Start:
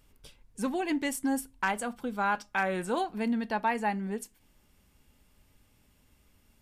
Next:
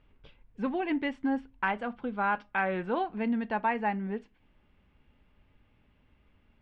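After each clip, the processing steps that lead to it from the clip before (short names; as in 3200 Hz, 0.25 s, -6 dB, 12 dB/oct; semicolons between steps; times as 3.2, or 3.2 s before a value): LPF 3000 Hz 24 dB/oct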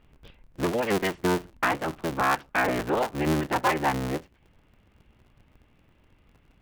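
cycle switcher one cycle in 3, inverted; gain +4.5 dB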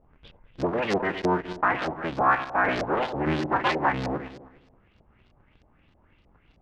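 regenerating reverse delay 0.102 s, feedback 51%, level -9 dB; LFO low-pass saw up 3.2 Hz 610–5600 Hz; gain -2 dB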